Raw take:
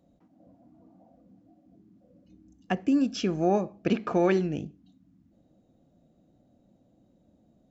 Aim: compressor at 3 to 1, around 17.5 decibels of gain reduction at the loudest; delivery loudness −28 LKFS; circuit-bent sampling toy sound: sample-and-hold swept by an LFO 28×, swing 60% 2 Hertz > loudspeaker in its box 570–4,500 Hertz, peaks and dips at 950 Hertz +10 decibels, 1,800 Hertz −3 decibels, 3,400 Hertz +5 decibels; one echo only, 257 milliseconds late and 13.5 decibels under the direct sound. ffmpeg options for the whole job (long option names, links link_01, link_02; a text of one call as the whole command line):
ffmpeg -i in.wav -af "acompressor=threshold=-44dB:ratio=3,aecho=1:1:257:0.211,acrusher=samples=28:mix=1:aa=0.000001:lfo=1:lforange=16.8:lforate=2,highpass=570,equalizer=frequency=950:width_type=q:width=4:gain=10,equalizer=frequency=1800:width_type=q:width=4:gain=-3,equalizer=frequency=3400:width_type=q:width=4:gain=5,lowpass=frequency=4500:width=0.5412,lowpass=frequency=4500:width=1.3066,volume=18.5dB" out.wav